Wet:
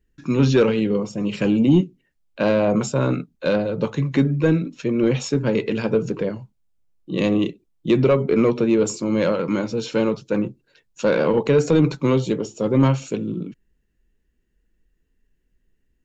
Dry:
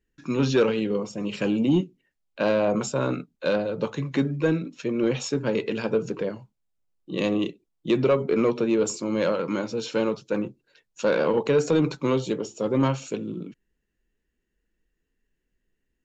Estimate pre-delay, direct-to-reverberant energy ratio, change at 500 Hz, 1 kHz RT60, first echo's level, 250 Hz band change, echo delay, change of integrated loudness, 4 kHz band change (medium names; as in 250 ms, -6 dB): no reverb, no reverb, +3.5 dB, no reverb, no echo, +5.5 dB, no echo, +4.5 dB, +2.0 dB